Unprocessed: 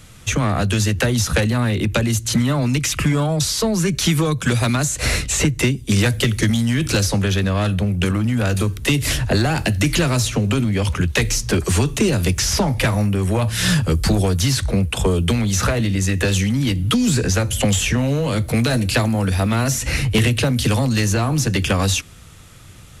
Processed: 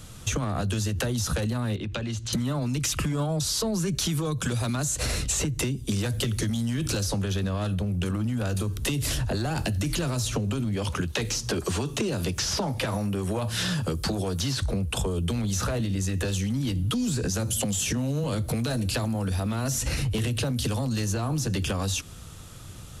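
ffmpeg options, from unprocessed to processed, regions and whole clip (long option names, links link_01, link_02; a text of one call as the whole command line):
ffmpeg -i in.wav -filter_complex "[0:a]asettb=1/sr,asplit=3[link_01][link_02][link_03];[link_01]atrim=end=1.764[link_04];[link_02]atrim=start=1.76:end=2.33,asetpts=PTS-STARTPTS,afade=type=in:duration=0.004:curve=qsin,afade=type=out:start_time=0.566:duration=0.004:curve=qsin,lowpass=3500,tiltshelf=frequency=1300:gain=-4,acompressor=threshold=-30dB:ratio=2.5:attack=3.2:release=140:knee=1:detection=peak[link_05];[link_03]atrim=start=2.326[link_06];[link_04][link_05]acrossfade=duration=0.004:curve1=hsin:curve2=qsin[link_07];[link_07][link_06]acrossfade=duration=0.004:curve1=qsin:curve2=hsin,asettb=1/sr,asplit=3[link_08][link_09][link_10];[link_08]atrim=end=10.764[link_11];[link_09]atrim=start=10.76:end=14.62,asetpts=PTS-STARTPTS,afade=type=in:duration=0.004:curve=qsin,afade=type=out:start_time=3.856:duration=0.004:curve=qsin,acrossover=split=5300[link_12][link_13];[link_13]acompressor=threshold=-34dB:ratio=4:attack=1:release=60[link_14];[link_12][link_14]amix=inputs=2:normalize=0,highpass=frequency=180:poles=1[link_15];[link_10]atrim=start=14.616[link_16];[link_11][link_15]acrossfade=duration=0.004:curve1=hsin:curve2=qsin[link_17];[link_17][link_16]acrossfade=duration=0.004:curve1=qsin:curve2=hsin,asettb=1/sr,asplit=3[link_18][link_19][link_20];[link_18]atrim=end=17.274[link_21];[link_19]atrim=start=17.27:end=18.24,asetpts=PTS-STARTPTS,afade=type=in:duration=0.004:curve=qsin,afade=type=out:start_time=0.966:duration=0.004:curve=qsin,highpass=180,bass=frequency=250:gain=11,treble=frequency=4000:gain=6[link_22];[link_20]atrim=start=18.236[link_23];[link_21][link_22]acrossfade=duration=0.004:curve1=hsin:curve2=qsin[link_24];[link_24][link_23]acrossfade=duration=0.004:curve1=qsin:curve2=hsin,equalizer=frequency=2100:width=2:gain=-7.5,alimiter=limit=-14.5dB:level=0:latency=1,acompressor=threshold=-24dB:ratio=6" out.wav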